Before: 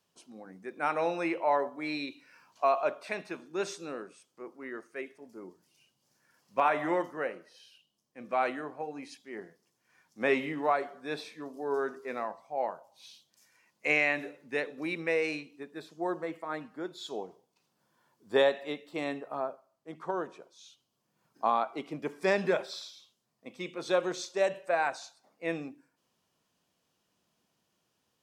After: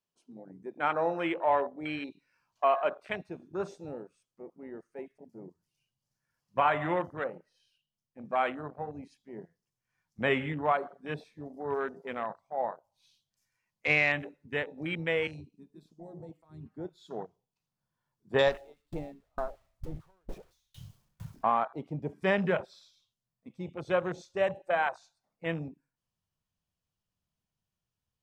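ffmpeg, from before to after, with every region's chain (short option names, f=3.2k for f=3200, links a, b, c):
-filter_complex "[0:a]asettb=1/sr,asplit=3[a][b][c];[a]atrim=end=15.274[d];[b]atrim=start=15.27:end=16.66,asetpts=PTS-STARTPTS,afade=t=in:d=0.004:c=qsin,afade=t=out:st=1.386:d=0.004:c=qsin,equalizer=f=1.8k:t=o:w=1.1:g=-11.5,bandreject=f=60:t=h:w=6,bandreject=f=120:t=h:w=6,bandreject=f=180:t=h:w=6,bandreject=f=240:t=h:w=6,bandreject=f=300:t=h:w=6,bandreject=f=360:t=h:w=6,acrossover=split=160|3000[e][f][g];[f]acompressor=threshold=-47dB:ratio=2.5:attack=3.2:release=140:knee=2.83:detection=peak[h];[e][h][g]amix=inputs=3:normalize=0[i];[c]atrim=start=16.656[j];[d][i]acrossfade=d=0.004:c1=hsin:c2=qsin[k];[k][j]acrossfade=d=0.004:c1=qsin:c2=hsin,asettb=1/sr,asplit=3[l][m][n];[l]atrim=end=18.474[o];[m]atrim=start=18.47:end=21.44,asetpts=PTS-STARTPTS,afade=t=in:d=0.004:c=qsin,afade=t=out:st=2.966:d=0.004:c=qsin,aeval=exprs='val(0)+0.5*0.02*sgn(val(0))':c=same,aeval=exprs='val(0)*pow(10,-33*if(lt(mod(2.2*n/s,1),2*abs(2.2)/1000),1-mod(2.2*n/s,1)/(2*abs(2.2)/1000),(mod(2.2*n/s,1)-2*abs(2.2)/1000)/(1-2*abs(2.2)/1000))/20)':c=same[p];[n]atrim=start=21.436[q];[o][p]acrossfade=d=0.004:c1=hsin:c2=qsin[r];[r][q]acrossfade=d=0.004:c1=qsin:c2=hsin,lowshelf=f=65:g=9.5,afwtdn=0.0126,asubboost=boost=7.5:cutoff=110,volume=1.5dB"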